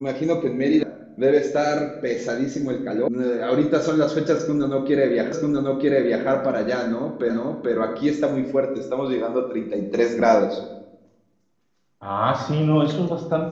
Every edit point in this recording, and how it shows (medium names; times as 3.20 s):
0.83 s: sound stops dead
3.08 s: sound stops dead
5.32 s: repeat of the last 0.94 s
7.30 s: repeat of the last 0.44 s